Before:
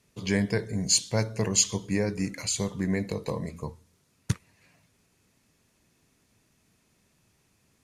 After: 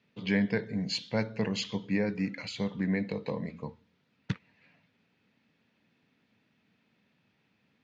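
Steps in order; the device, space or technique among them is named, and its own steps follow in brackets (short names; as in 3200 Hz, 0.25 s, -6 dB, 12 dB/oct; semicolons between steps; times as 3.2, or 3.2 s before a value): kitchen radio (speaker cabinet 170–3700 Hz, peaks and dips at 220 Hz +3 dB, 370 Hz -7 dB, 650 Hz -4 dB, 1100 Hz -6 dB)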